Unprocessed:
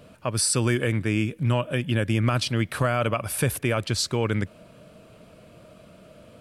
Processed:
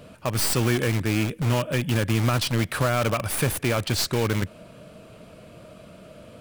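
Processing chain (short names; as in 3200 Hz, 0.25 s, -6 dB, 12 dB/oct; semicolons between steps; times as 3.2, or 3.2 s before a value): tracing distortion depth 0.057 ms; in parallel at -5.5 dB: wrapped overs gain 23.5 dB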